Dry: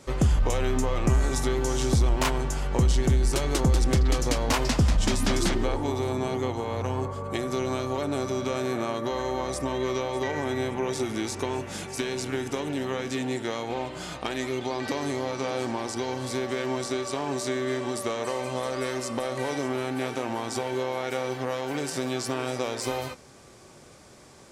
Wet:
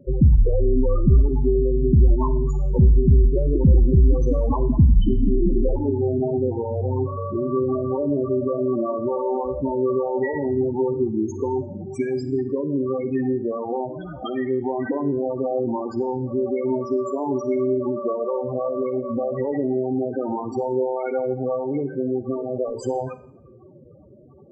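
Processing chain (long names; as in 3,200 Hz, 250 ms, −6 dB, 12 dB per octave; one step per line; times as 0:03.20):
0:21.86–0:22.79: variable-slope delta modulation 16 kbit/s
spectral peaks only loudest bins 8
four-comb reverb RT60 0.66 s, DRR 13.5 dB
level +7.5 dB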